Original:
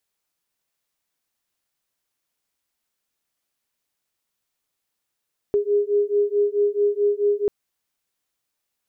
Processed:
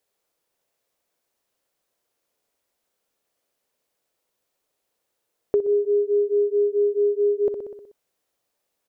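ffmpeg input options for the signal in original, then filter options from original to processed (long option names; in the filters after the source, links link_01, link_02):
-f lavfi -i "aevalsrc='0.0944*(sin(2*PI*408*t)+sin(2*PI*412.6*t))':duration=1.94:sample_rate=44100"
-filter_complex "[0:a]asplit=2[link_01][link_02];[link_02]aecho=0:1:62|124|186|248|310|372|434:0.355|0.199|0.111|0.0623|0.0349|0.0195|0.0109[link_03];[link_01][link_03]amix=inputs=2:normalize=0,acompressor=threshold=-34dB:ratio=2,equalizer=frequency=510:width=1:gain=11.5"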